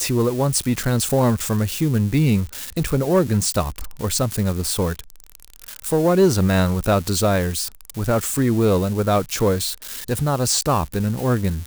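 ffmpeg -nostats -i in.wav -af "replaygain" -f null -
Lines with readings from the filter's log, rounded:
track_gain = +1.8 dB
track_peak = 0.300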